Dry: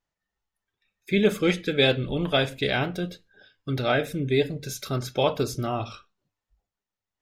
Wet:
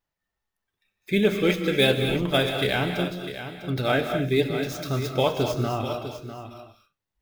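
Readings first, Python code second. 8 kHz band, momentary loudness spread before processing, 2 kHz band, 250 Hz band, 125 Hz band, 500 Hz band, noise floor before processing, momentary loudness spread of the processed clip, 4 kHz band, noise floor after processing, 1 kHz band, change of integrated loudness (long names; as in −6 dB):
−1.0 dB, 11 LU, +1.0 dB, +1.5 dB, +1.5 dB, +1.0 dB, below −85 dBFS, 14 LU, +1.0 dB, −85 dBFS, +1.5 dB, +1.0 dB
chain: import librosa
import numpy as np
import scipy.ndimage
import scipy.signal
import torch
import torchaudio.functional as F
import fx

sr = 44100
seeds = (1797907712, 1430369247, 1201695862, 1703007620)

y = scipy.ndimage.median_filter(x, 5, mode='constant')
y = fx.high_shelf(y, sr, hz=9600.0, db=8.5)
y = y + 10.0 ** (-11.0 / 20.0) * np.pad(y, (int(651 * sr / 1000.0), 0))[:len(y)]
y = fx.rev_gated(y, sr, seeds[0], gate_ms=270, shape='rising', drr_db=6.0)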